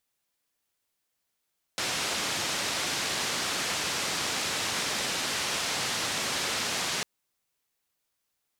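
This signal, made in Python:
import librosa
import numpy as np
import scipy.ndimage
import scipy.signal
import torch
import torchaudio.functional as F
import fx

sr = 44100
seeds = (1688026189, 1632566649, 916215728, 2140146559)

y = fx.band_noise(sr, seeds[0], length_s=5.25, low_hz=98.0, high_hz=6000.0, level_db=-30.5)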